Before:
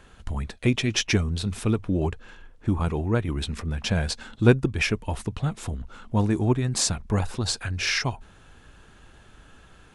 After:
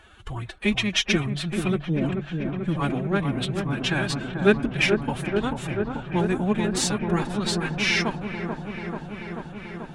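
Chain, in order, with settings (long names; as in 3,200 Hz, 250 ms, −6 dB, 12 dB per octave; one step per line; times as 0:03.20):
drawn EQ curve 110 Hz 0 dB, 3,400 Hz +9 dB, 4,900 Hz +1 dB, 10,000 Hz +3 dB
phase-vocoder pitch shift with formants kept +9 semitones
on a send: delay with a low-pass on its return 437 ms, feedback 79%, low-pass 1,300 Hz, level −5 dB
on the sum: level −3.5 dB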